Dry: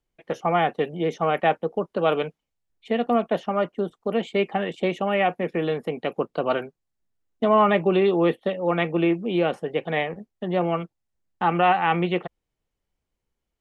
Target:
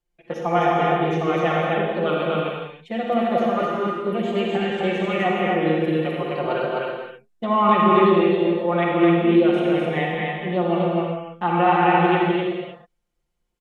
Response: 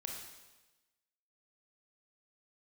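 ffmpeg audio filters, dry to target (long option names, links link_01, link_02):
-filter_complex "[0:a]aecho=1:1:5.7:0.87,asettb=1/sr,asplit=3[link_01][link_02][link_03];[link_01]atrim=end=8.214[link_04];[link_02]atrim=start=8.21:end=8.65,asetpts=PTS-STARTPTS,afade=type=in:duration=0.004:curve=qsin,afade=type=out:start_time=0.436:duration=0.004:curve=qsin,acompressor=threshold=-24dB:ratio=6[link_05];[link_03]atrim=start=8.646[link_06];[link_04][link_05]acrossfade=duration=0.004:curve1=hsin:curve2=qsin[link_07];[link_07][link_06]acrossfade=duration=0.004:curve1=qsin:curve2=hsin,aecho=1:1:212.8|256.6:0.316|0.794[link_08];[1:a]atrim=start_sample=2205,afade=type=out:start_time=0.25:duration=0.01,atrim=end_sample=11466,asetrate=27342,aresample=44100[link_09];[link_08][link_09]afir=irnorm=-1:irlink=0,volume=-3dB"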